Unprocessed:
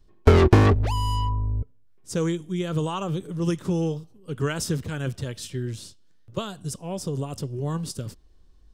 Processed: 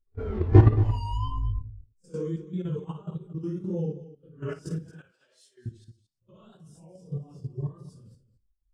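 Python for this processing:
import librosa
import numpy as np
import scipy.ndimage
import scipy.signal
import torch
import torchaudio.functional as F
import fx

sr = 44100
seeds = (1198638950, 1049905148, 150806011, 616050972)

p1 = fx.phase_scramble(x, sr, seeds[0], window_ms=200)
p2 = fx.vibrato(p1, sr, rate_hz=1.7, depth_cents=79.0)
p3 = fx.level_steps(p2, sr, step_db=14)
p4 = fx.highpass(p3, sr, hz=720.0, slope=12, at=(4.89, 5.66))
p5 = p4 + fx.echo_multitap(p4, sr, ms=(56, 224), db=(-9.5, -10.0), dry=0)
p6 = fx.spectral_expand(p5, sr, expansion=1.5)
y = p6 * librosa.db_to_amplitude(3.5)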